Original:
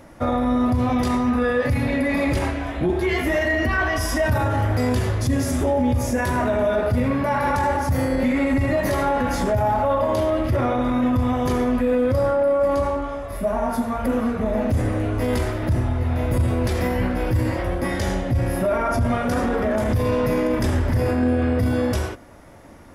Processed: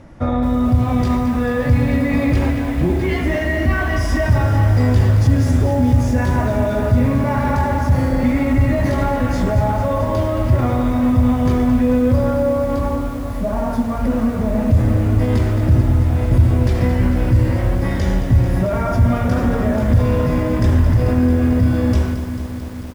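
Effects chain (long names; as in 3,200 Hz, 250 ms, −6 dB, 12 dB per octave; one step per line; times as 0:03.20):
low-pass filter 7,700 Hz 12 dB per octave
bass and treble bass +9 dB, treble −1 dB
repeating echo 147 ms, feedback 48%, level −17 dB
feedback echo at a low word length 221 ms, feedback 80%, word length 6 bits, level −10.5 dB
level −1 dB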